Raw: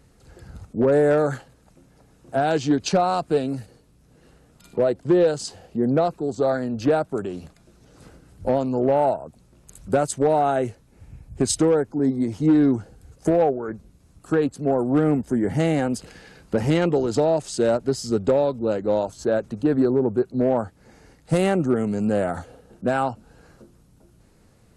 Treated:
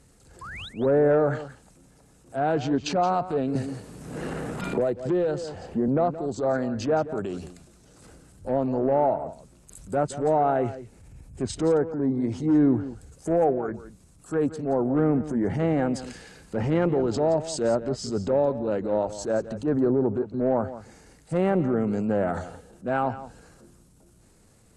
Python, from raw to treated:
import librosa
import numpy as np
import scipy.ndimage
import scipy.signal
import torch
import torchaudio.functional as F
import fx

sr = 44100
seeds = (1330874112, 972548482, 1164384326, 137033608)

y = fx.env_lowpass_down(x, sr, base_hz=1600.0, full_db=-16.5)
y = fx.peak_eq(y, sr, hz=8300.0, db=9.0, octaves=0.88)
y = fx.transient(y, sr, attack_db=-8, sustain_db=3)
y = fx.spec_paint(y, sr, seeds[0], shape='rise', start_s=0.41, length_s=0.28, low_hz=970.0, high_hz=4100.0, level_db=-37.0)
y = y + 10.0 ** (-14.0 / 20.0) * np.pad(y, (int(172 * sr / 1000.0), 0))[:len(y)]
y = fx.band_squash(y, sr, depth_pct=100, at=(3.55, 5.88))
y = y * librosa.db_to_amplitude(-2.0)